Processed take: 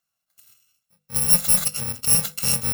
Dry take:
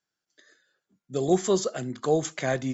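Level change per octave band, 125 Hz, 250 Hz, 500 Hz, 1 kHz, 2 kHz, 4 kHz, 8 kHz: +1.5 dB, -7.0 dB, -15.0 dB, -5.5 dB, +1.0 dB, +12.0 dB, no reading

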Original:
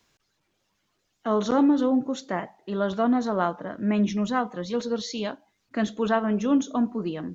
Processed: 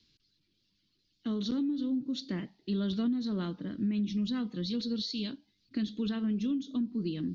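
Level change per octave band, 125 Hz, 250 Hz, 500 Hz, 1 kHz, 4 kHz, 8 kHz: -3.0 dB, -6.0 dB, -15.5 dB, -23.0 dB, -0.5 dB, no reading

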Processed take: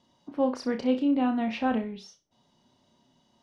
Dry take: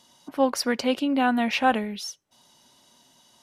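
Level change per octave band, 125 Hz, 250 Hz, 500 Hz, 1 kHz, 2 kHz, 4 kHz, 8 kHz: no reading, -0.5 dB, -3.5 dB, -8.0 dB, -11.0 dB, -12.0 dB, under -15 dB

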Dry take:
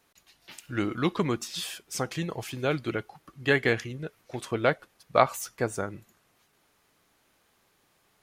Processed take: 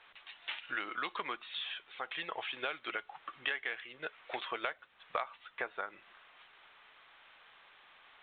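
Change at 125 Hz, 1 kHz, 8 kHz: -32.5 dB, -8.5 dB, under -40 dB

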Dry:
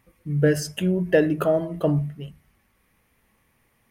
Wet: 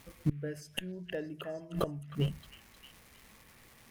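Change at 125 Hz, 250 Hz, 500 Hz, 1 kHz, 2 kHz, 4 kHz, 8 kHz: -11.0 dB, -14.5 dB, -17.0 dB, -10.5 dB, -14.5 dB, -5.0 dB, -14.5 dB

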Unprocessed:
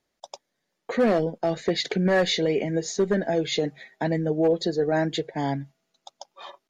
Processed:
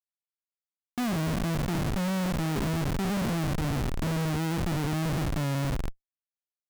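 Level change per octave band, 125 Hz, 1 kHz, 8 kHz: +3.5 dB, -3.5 dB, no reading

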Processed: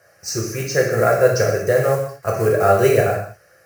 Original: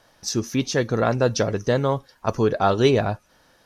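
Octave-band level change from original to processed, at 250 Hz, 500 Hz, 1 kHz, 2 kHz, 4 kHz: -3.0 dB, +6.0 dB, +3.5 dB, +6.5 dB, -2.0 dB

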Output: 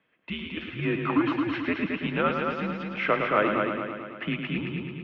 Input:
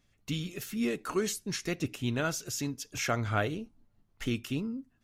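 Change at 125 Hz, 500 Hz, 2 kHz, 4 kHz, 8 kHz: +1.0 dB, +6.5 dB, +8.0 dB, +1.0 dB, under -30 dB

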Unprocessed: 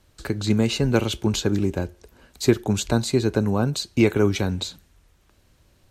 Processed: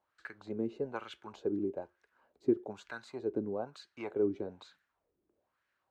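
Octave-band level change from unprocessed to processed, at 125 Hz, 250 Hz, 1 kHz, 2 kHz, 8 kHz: -27.0 dB, -15.0 dB, -14.0 dB, -16.5 dB, under -30 dB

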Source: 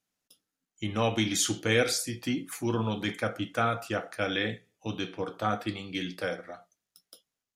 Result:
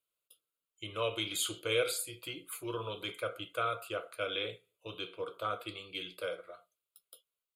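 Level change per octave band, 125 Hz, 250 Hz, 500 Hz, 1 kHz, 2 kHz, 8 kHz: -14.0 dB, -15.0 dB, -5.0 dB, -6.5 dB, -7.5 dB, -7.5 dB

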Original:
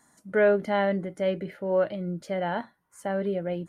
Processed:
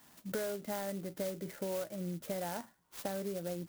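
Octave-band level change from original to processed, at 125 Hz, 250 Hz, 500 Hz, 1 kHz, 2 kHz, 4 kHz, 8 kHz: -9.0 dB, -10.0 dB, -13.5 dB, -12.5 dB, -15.5 dB, -5.5 dB, no reading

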